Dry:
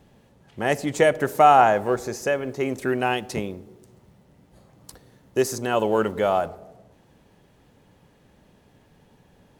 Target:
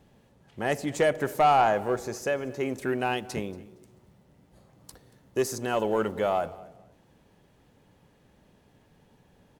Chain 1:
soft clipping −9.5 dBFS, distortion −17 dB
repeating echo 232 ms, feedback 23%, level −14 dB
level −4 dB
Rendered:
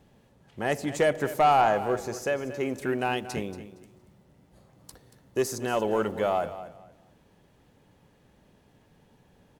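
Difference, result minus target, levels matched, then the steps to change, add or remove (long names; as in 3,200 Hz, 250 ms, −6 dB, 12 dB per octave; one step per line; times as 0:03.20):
echo-to-direct +8 dB
change: repeating echo 232 ms, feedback 23%, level −22 dB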